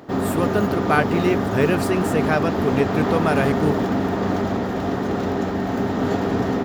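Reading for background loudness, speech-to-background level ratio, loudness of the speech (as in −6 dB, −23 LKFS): −22.5 LKFS, −0.5 dB, −23.0 LKFS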